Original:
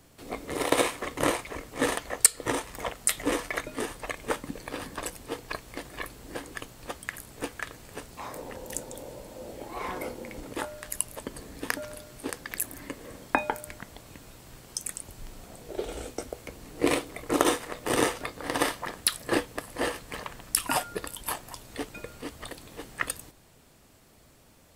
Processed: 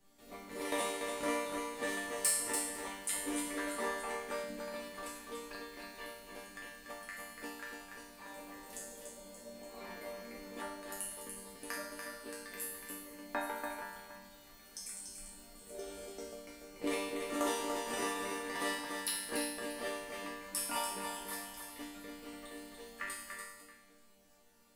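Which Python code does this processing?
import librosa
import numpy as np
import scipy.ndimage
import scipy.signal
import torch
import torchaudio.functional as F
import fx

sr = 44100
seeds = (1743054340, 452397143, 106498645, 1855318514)

y = fx.reverse_delay(x, sr, ms=566, wet_db=-11.5)
y = fx.peak_eq(y, sr, hz=960.0, db=10.5, octaves=2.1, at=(3.58, 4.07))
y = fx.resonator_bank(y, sr, root=55, chord='minor', decay_s=0.83)
y = np.clip(10.0 ** (35.5 / 20.0) * y, -1.0, 1.0) / 10.0 ** (35.5 / 20.0)
y = y + 10.0 ** (-6.0 / 20.0) * np.pad(y, (int(289 * sr / 1000.0), 0))[:len(y)]
y = F.gain(torch.from_numpy(y), 11.5).numpy()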